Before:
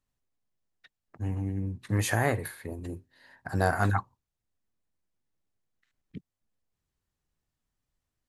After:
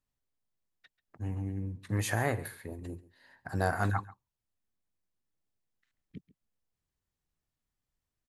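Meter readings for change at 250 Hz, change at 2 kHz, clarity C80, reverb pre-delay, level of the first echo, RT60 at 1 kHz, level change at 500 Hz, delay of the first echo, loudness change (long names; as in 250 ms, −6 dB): −4.0 dB, −4.0 dB, no reverb audible, no reverb audible, −19.5 dB, no reverb audible, −4.0 dB, 137 ms, −4.0 dB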